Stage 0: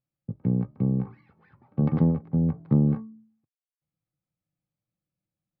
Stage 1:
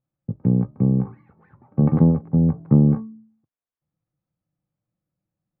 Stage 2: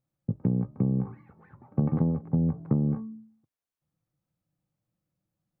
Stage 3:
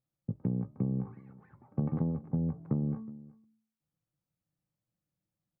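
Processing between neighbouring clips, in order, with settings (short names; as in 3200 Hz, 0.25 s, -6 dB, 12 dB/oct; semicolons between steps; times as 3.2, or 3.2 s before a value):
LPF 1400 Hz 12 dB/oct; gain +6 dB
compressor 6:1, threshold -22 dBFS, peak gain reduction 12 dB
echo 0.368 s -21.5 dB; gain -6 dB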